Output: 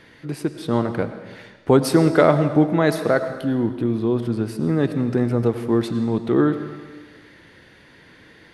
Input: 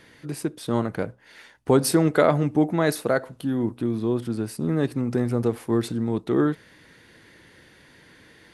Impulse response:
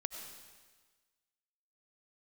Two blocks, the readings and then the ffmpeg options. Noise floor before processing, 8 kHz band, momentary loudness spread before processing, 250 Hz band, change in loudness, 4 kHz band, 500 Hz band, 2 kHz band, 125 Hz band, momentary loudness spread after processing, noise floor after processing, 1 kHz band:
-54 dBFS, -4.0 dB, 11 LU, +4.0 dB, +3.5 dB, +1.5 dB, +4.0 dB, +3.5 dB, +4.0 dB, 12 LU, -50 dBFS, +3.5 dB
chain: -filter_complex "[0:a]asplit=2[a][b];[1:a]atrim=start_sample=2205,lowpass=5.5k[c];[b][c]afir=irnorm=-1:irlink=0,volume=2.5dB[d];[a][d]amix=inputs=2:normalize=0,volume=-3dB"

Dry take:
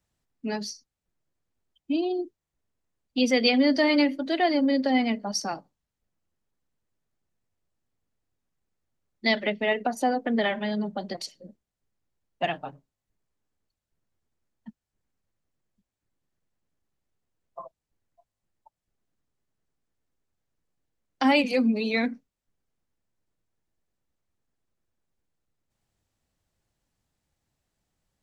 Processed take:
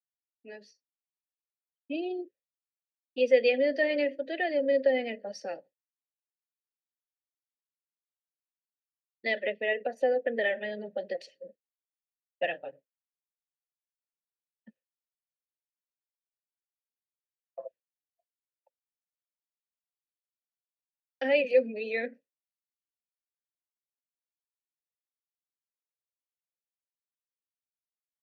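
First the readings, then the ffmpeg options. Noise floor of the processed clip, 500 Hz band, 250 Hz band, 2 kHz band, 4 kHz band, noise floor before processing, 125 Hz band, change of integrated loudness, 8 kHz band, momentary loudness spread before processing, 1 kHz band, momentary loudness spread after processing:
under -85 dBFS, +1.0 dB, -13.5 dB, -3.0 dB, -11.0 dB, under -85 dBFS, under -15 dB, -4.0 dB, under -15 dB, 16 LU, -11.0 dB, 21 LU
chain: -filter_complex "[0:a]dynaudnorm=f=110:g=21:m=14.5dB,agate=range=-33dB:threshold=-34dB:ratio=3:detection=peak,asplit=3[a][b][c];[a]bandpass=f=530:t=q:w=8,volume=0dB[d];[b]bandpass=f=1.84k:t=q:w=8,volume=-6dB[e];[c]bandpass=f=2.48k:t=q:w=8,volume=-9dB[f];[d][e][f]amix=inputs=3:normalize=0,volume=-3dB"

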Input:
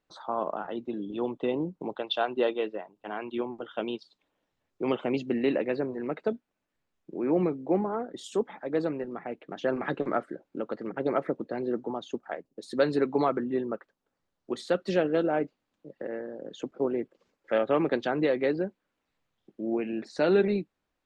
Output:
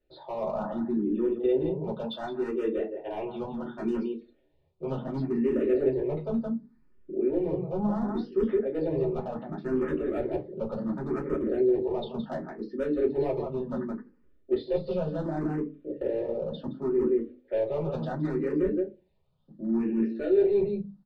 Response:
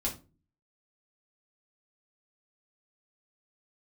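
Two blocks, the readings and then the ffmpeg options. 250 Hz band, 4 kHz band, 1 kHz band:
+2.0 dB, n/a, -5.0 dB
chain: -filter_complex "[0:a]aresample=11025,aresample=44100,dynaudnorm=f=750:g=13:m=5.5dB,equalizer=f=210:w=0.74:g=5.5,asplit=2[a][b];[b]adelay=169.1,volume=-9dB,highshelf=f=4k:g=-3.8[c];[a][c]amix=inputs=2:normalize=0,areverse,acompressor=threshold=-27dB:ratio=10,areverse,bandreject=f=50:t=h:w=6,bandreject=f=100:t=h:w=6,bandreject=f=150:t=h:w=6,bandreject=f=200:t=h:w=6,bandreject=f=250:t=h:w=6,asoftclip=type=hard:threshold=-25.5dB,lowshelf=f=450:g=6[d];[1:a]atrim=start_sample=2205,asetrate=74970,aresample=44100[e];[d][e]afir=irnorm=-1:irlink=0,asplit=2[f][g];[g]afreqshift=0.69[h];[f][h]amix=inputs=2:normalize=1"

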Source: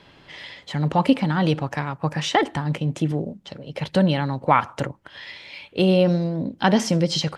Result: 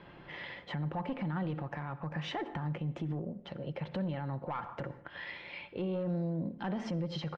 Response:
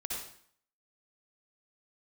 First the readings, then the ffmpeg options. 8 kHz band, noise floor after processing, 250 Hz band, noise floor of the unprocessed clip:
under -25 dB, -54 dBFS, -15.0 dB, -52 dBFS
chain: -filter_complex "[0:a]asoftclip=type=tanh:threshold=-12.5dB,lowpass=2k,aecho=1:1:5.7:0.32,acompressor=threshold=-26dB:ratio=4,asplit=2[a][b];[1:a]atrim=start_sample=2205,afade=t=out:st=0.26:d=0.01,atrim=end_sample=11907[c];[b][c]afir=irnorm=-1:irlink=0,volume=-16.5dB[d];[a][d]amix=inputs=2:normalize=0,alimiter=level_in=2.5dB:limit=-24dB:level=0:latency=1:release=132,volume=-2.5dB,volume=-2dB"

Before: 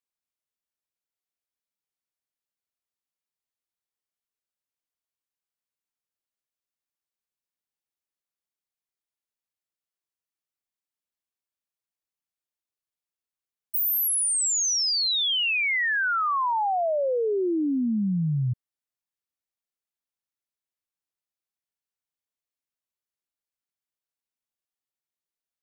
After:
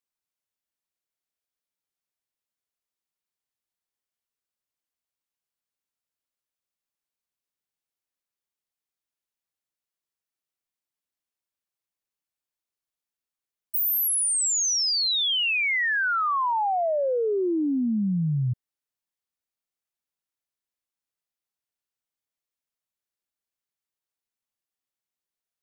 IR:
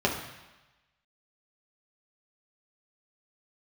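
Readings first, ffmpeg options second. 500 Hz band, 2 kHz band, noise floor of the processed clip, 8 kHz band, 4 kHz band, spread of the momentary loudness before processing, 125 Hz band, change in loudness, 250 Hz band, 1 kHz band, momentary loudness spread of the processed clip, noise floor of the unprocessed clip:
+0.5 dB, +0.5 dB, under -85 dBFS, +0.5 dB, +0.5 dB, 5 LU, +0.5 dB, +0.5 dB, +0.5 dB, +0.5 dB, 5 LU, under -85 dBFS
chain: -af "acontrast=48,volume=-5.5dB"

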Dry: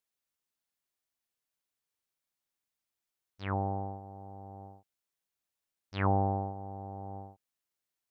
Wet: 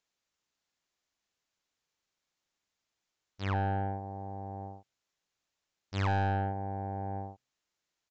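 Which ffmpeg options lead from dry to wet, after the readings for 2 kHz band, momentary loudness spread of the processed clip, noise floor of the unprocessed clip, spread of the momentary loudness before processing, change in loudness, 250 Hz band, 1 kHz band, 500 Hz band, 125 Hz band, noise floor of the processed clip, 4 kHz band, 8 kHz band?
+5.0 dB, 14 LU, under -85 dBFS, 19 LU, 0.0 dB, -0.5 dB, +1.0 dB, -1.0 dB, +2.0 dB, under -85 dBFS, +5.5 dB, n/a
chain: -af "bandreject=f=125.1:t=h:w=4,bandreject=f=250.2:t=h:w=4,aresample=16000,asoftclip=type=tanh:threshold=-32.5dB,aresample=44100,volume=6.5dB"

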